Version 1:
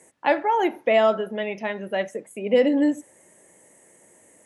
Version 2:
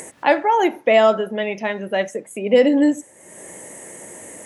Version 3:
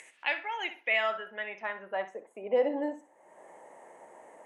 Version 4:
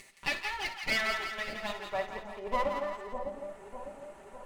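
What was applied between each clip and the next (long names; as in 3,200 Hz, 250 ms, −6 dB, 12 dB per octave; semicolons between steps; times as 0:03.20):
dynamic equaliser 7,000 Hz, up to +7 dB, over −52 dBFS, Q 1.4; upward compression, threshold −30 dBFS; level +4.5 dB
band-pass filter sweep 2,600 Hz → 860 Hz, 0:00.68–0:02.25; flutter between parallel walls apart 10.7 metres, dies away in 0.28 s; level −3 dB
lower of the sound and its delayed copy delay 5.1 ms; notch filter 1,600 Hz, Q 16; echo with a time of its own for lows and highs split 840 Hz, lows 603 ms, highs 169 ms, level −5.5 dB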